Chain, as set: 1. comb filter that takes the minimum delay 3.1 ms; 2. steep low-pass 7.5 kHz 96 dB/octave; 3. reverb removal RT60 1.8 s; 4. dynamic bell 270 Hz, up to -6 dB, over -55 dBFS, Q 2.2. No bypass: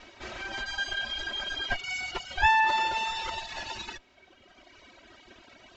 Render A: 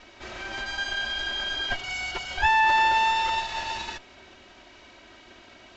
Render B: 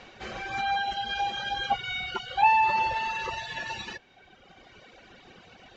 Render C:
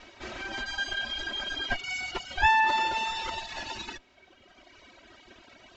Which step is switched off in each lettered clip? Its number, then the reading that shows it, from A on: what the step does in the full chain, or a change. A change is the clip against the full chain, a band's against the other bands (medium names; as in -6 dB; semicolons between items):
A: 3, crest factor change -3.5 dB; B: 1, crest factor change -1.5 dB; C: 4, 250 Hz band +3.0 dB